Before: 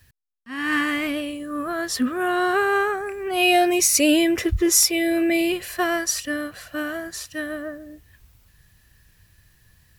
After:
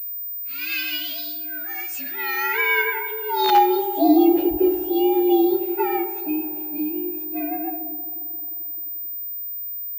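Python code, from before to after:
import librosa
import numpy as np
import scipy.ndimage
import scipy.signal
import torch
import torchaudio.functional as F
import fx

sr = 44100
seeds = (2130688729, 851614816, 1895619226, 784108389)

y = fx.partial_stretch(x, sr, pct=117)
y = fx.notch(y, sr, hz=4300.0, q=11.0, at=(2.42, 3.27))
y = fx.spec_repair(y, sr, seeds[0], start_s=6.25, length_s=0.97, low_hz=660.0, high_hz=2300.0, source='both')
y = fx.vibrato(y, sr, rate_hz=1.6, depth_cents=54.0)
y = (np.mod(10.0 ** (9.0 / 20.0) * y + 1.0, 2.0) - 1.0) / 10.0 ** (9.0 / 20.0)
y = fx.filter_sweep_bandpass(y, sr, from_hz=5400.0, to_hz=470.0, start_s=1.91, end_s=4.18, q=0.87)
y = fx.echo_wet_bandpass(y, sr, ms=88, feedback_pct=83, hz=430.0, wet_db=-14)
y = fx.room_shoebox(y, sr, seeds[1], volume_m3=1500.0, walls='mixed', distance_m=0.47)
y = fx.pwm(y, sr, carrier_hz=15000.0)
y = y * 10.0 ** (5.5 / 20.0)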